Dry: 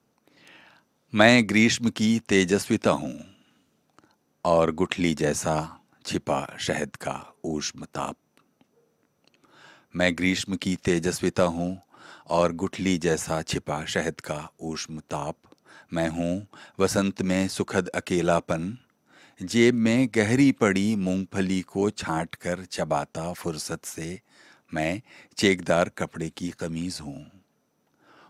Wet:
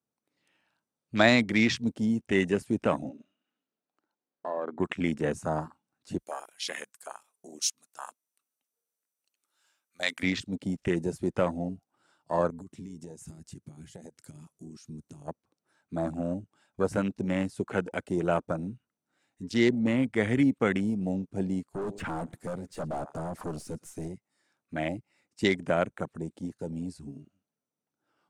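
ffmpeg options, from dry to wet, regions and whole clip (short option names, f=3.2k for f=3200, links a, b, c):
-filter_complex "[0:a]asettb=1/sr,asplit=3[a][b][c];[a]atrim=end=3.094[d];[b]atrim=start=3.09:end=4.8,asetpts=PTS-STARTPTS,afade=t=in:d=0.004:c=qsin,afade=t=out:st=1.706:d=0.004:c=qsin,highpass=270,lowpass=3.9k,acompressor=threshold=-29dB:ratio=2:attack=3.2:release=140:knee=1:detection=peak[e];[c]atrim=start=4.796[f];[d][e]acrossfade=d=0.004:c1=hsin:c2=qsin[g];[g][f]acrossfade=d=0.004:c1=qsin:c2=hsin,asettb=1/sr,asplit=3[h][i][j];[h]atrim=end=6.184[k];[i]atrim=start=6.18:end=10.23,asetpts=PTS-STARTPTS,afade=t=in:d=0.004:c=qsin,afade=t=out:st=4.046:d=0.004:c=qsin,highpass=f=1.3k:p=1,aemphasis=mode=production:type=50fm[l];[j]atrim=start=10.226[m];[k][l]acrossfade=d=0.004:c1=hsin:c2=qsin[n];[n][m]acrossfade=d=0.004:c1=qsin:c2=hsin,asettb=1/sr,asplit=3[o][p][q];[o]atrim=end=12.504[r];[p]atrim=start=12.5:end=15.28,asetpts=PTS-STARTPTS,afade=t=in:d=0.004:c=qsin,afade=t=out:st=2.776:d=0.004:c=qsin,acompressor=threshold=-36dB:ratio=10:attack=3.2:release=140:knee=1:detection=peak,bass=f=250:g=5,treble=f=4k:g=9[s];[q]atrim=start=15.276[t];[r][s]acrossfade=d=0.004:c1=hsin:c2=qsin[u];[u][t]acrossfade=d=0.004:c1=qsin:c2=hsin,asettb=1/sr,asplit=3[v][w][x];[v]atrim=end=21.744[y];[w]atrim=start=21.74:end=24.08,asetpts=PTS-STARTPTS,afade=t=in:d=0.004:c=qsin,afade=t=out:st=2.336:d=0.004:c=qsin,aecho=1:1:114|228:0.0631|0.0145,atrim=end_sample=103194,acontrast=88,aeval=exprs='(tanh(20*val(0)+0.2)-tanh(0.2))/20':c=same[z];[x]atrim=start=24.076[aa];[y][z]acrossfade=d=0.004:c1=hsin:c2=qsin[ab];[ab][aa]acrossfade=d=0.004:c1=qsin:c2=hsin,afwtdn=0.0282,equalizer=f=8.8k:w=2:g=8.5,volume=-4.5dB"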